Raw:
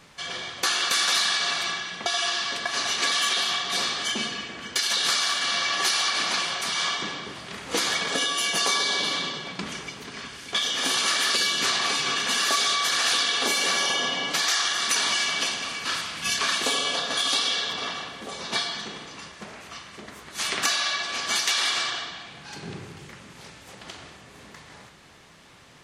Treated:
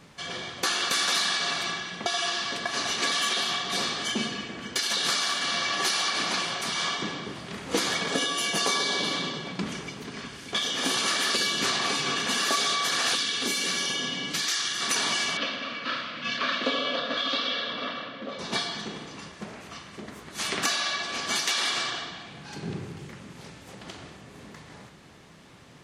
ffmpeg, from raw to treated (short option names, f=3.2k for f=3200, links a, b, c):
-filter_complex "[0:a]asettb=1/sr,asplit=3[a][b][c];[a]atrim=end=13.154[d];[b]atrim=start=13.15:end=14.81,asetpts=PTS-STARTPTS,afade=t=in:d=0.004:c=qsin,afade=t=out:st=1.656:d=0.004:c=qsin,equalizer=f=730:t=o:w=1.7:g=-11[e];[c]atrim=start=14.806[f];[d][e]acrossfade=d=0.004:c1=hsin:c2=qsin[g];[g][f]acrossfade=d=0.004:c1=qsin:c2=hsin,asettb=1/sr,asplit=3[h][i][j];[h]atrim=end=15.374[k];[i]atrim=start=15.37:end=18.39,asetpts=PTS-STARTPTS,afade=t=in:d=0.004:c=qsin,afade=t=out:st=3.016:d=0.004:c=qsin,highpass=f=130:w=0.5412,highpass=f=130:w=1.3066,equalizer=f=170:t=q:w=4:g=-10,equalizer=f=250:t=q:w=4:g=4,equalizer=f=390:t=q:w=4:g=-9,equalizer=f=560:t=q:w=4:g=8,equalizer=f=820:t=q:w=4:g=-10,equalizer=f=1.3k:t=q:w=4:g=4,lowpass=f=4.1k:w=0.5412,lowpass=f=4.1k:w=1.3066[l];[j]atrim=start=18.386[m];[k][l]acrossfade=d=0.004:c1=hsin:c2=qsin[n];[n][m]acrossfade=d=0.004:c1=qsin:c2=hsin,equalizer=f=190:w=0.38:g=7.5,volume=-3dB"